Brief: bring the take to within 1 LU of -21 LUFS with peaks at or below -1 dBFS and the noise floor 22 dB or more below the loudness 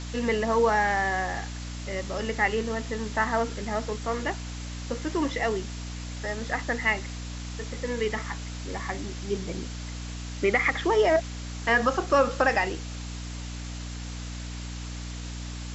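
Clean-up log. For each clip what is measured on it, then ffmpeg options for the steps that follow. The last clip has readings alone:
hum 60 Hz; highest harmonic 300 Hz; hum level -34 dBFS; noise floor -36 dBFS; noise floor target -51 dBFS; loudness -28.5 LUFS; peak level -10.5 dBFS; loudness target -21.0 LUFS
-> -af "bandreject=f=60:t=h:w=4,bandreject=f=120:t=h:w=4,bandreject=f=180:t=h:w=4,bandreject=f=240:t=h:w=4,bandreject=f=300:t=h:w=4"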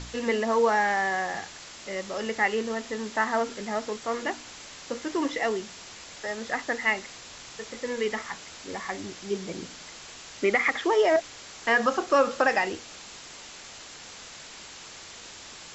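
hum not found; noise floor -45 dBFS; noise floor target -50 dBFS
-> -af "afftdn=nr=6:nf=-45"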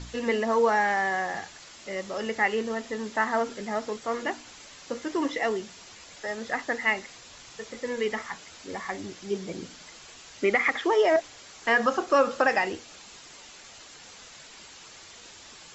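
noise floor -48 dBFS; noise floor target -50 dBFS
-> -af "afftdn=nr=6:nf=-48"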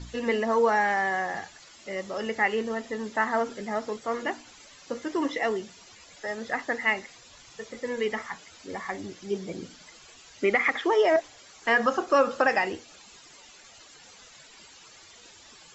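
noise floor -52 dBFS; loudness -27.5 LUFS; peak level -10.0 dBFS; loudness target -21.0 LUFS
-> -af "volume=2.11"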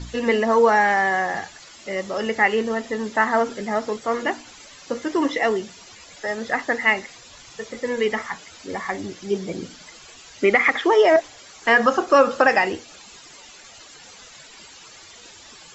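loudness -21.0 LUFS; peak level -3.5 dBFS; noise floor -45 dBFS

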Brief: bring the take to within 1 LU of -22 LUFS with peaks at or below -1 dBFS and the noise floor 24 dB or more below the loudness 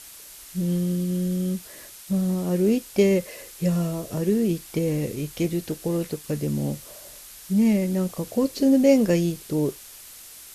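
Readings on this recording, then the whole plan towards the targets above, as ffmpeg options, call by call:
noise floor -44 dBFS; noise floor target -48 dBFS; loudness -24.0 LUFS; peak level -7.0 dBFS; loudness target -22.0 LUFS
-> -af "afftdn=nr=6:nf=-44"
-af "volume=1.26"

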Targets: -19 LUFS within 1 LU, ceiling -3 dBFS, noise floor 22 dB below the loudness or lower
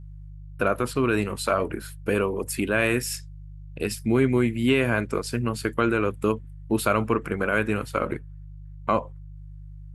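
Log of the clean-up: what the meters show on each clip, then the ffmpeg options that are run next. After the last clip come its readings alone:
hum 50 Hz; highest harmonic 150 Hz; hum level -38 dBFS; loudness -25.5 LUFS; peak level -8.0 dBFS; loudness target -19.0 LUFS
-> -af "bandreject=f=50:t=h:w=4,bandreject=f=100:t=h:w=4,bandreject=f=150:t=h:w=4"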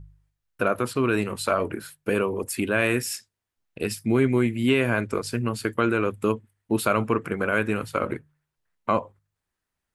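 hum not found; loudness -25.5 LUFS; peak level -8.0 dBFS; loudness target -19.0 LUFS
-> -af "volume=2.11,alimiter=limit=0.708:level=0:latency=1"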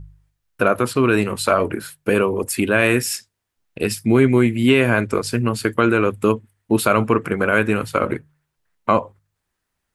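loudness -19.0 LUFS; peak level -3.0 dBFS; noise floor -77 dBFS

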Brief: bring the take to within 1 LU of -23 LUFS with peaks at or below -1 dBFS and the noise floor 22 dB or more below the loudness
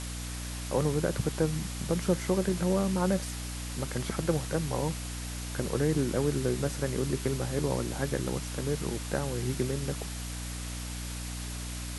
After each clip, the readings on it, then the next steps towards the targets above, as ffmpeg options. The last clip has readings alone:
hum 60 Hz; highest harmonic 300 Hz; hum level -36 dBFS; noise floor -37 dBFS; noise floor target -54 dBFS; loudness -31.5 LUFS; peak level -13.5 dBFS; loudness target -23.0 LUFS
-> -af "bandreject=f=60:t=h:w=4,bandreject=f=120:t=h:w=4,bandreject=f=180:t=h:w=4,bandreject=f=240:t=h:w=4,bandreject=f=300:t=h:w=4"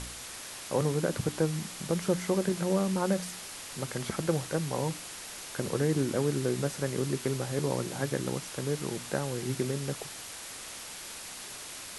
hum not found; noise floor -43 dBFS; noise floor target -54 dBFS
-> -af "afftdn=nr=11:nf=-43"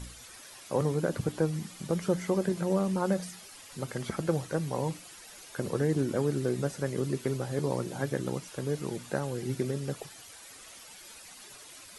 noise floor -50 dBFS; noise floor target -54 dBFS
-> -af "afftdn=nr=6:nf=-50"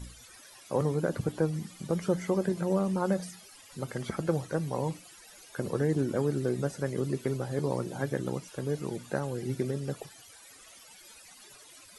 noise floor -53 dBFS; noise floor target -54 dBFS
-> -af "afftdn=nr=6:nf=-53"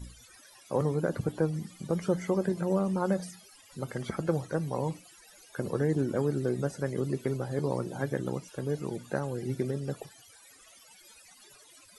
noise floor -56 dBFS; loudness -32.0 LUFS; peak level -14.5 dBFS; loudness target -23.0 LUFS
-> -af "volume=2.82"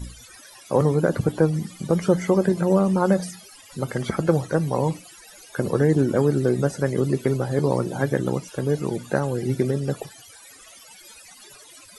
loudness -23.0 LUFS; peak level -5.5 dBFS; noise floor -47 dBFS

